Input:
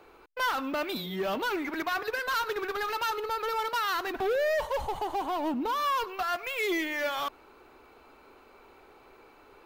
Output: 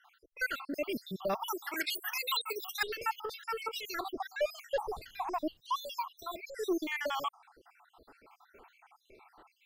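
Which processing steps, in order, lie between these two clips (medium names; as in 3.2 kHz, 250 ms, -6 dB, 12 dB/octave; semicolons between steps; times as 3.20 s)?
random holes in the spectrogram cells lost 71%; 1.48–2.83 s: tilt EQ +4.5 dB/octave; 4.83–5.59 s: added noise brown -65 dBFS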